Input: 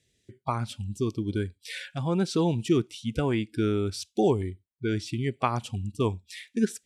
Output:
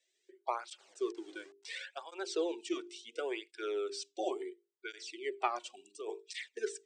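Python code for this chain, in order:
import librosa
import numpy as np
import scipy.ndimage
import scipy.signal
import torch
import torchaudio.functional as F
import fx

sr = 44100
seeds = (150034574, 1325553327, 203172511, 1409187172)

y = fx.delta_hold(x, sr, step_db=-48.0, at=(0.78, 1.79))
y = scipy.signal.sosfilt(scipy.signal.cheby1(5, 1.0, [360.0, 8500.0], 'bandpass', fs=sr, output='sos'), y)
y = fx.dynamic_eq(y, sr, hz=640.0, q=1.0, threshold_db=-41.0, ratio=4.0, max_db=-4, at=(2.73, 3.52))
y = fx.hum_notches(y, sr, base_hz=50, count=9)
y = fx.over_compress(y, sr, threshold_db=-35.0, ratio=-1.0, at=(5.77, 6.49))
y = fx.flanger_cancel(y, sr, hz=0.71, depth_ms=2.5)
y = y * 10.0 ** (-2.5 / 20.0)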